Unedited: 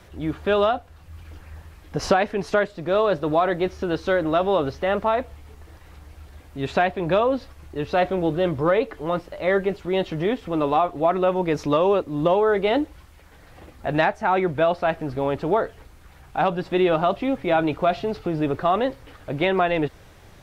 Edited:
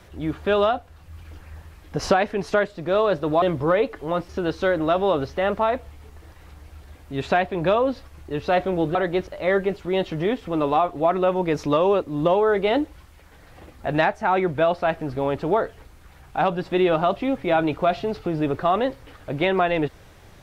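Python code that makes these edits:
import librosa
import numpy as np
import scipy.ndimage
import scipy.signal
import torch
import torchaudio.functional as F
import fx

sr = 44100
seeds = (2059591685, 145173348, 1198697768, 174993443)

y = fx.edit(x, sr, fx.swap(start_s=3.42, length_s=0.32, other_s=8.4, other_length_s=0.87), tone=tone)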